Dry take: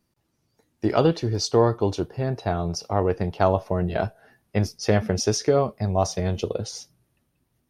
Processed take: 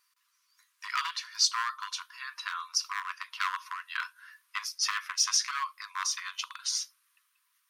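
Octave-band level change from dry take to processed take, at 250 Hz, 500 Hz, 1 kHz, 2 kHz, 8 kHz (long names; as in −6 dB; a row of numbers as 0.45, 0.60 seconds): below −40 dB, below −40 dB, −6.5 dB, +2.5 dB, +3.0 dB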